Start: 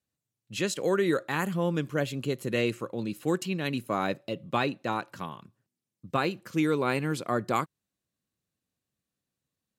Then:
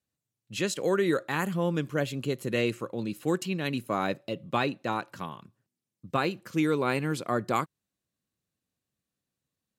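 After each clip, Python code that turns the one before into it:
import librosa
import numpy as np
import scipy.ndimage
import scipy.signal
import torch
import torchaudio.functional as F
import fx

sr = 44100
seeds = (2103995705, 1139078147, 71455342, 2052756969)

y = x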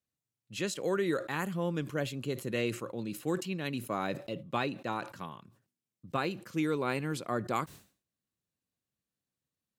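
y = fx.sustainer(x, sr, db_per_s=140.0)
y = F.gain(torch.from_numpy(y), -5.0).numpy()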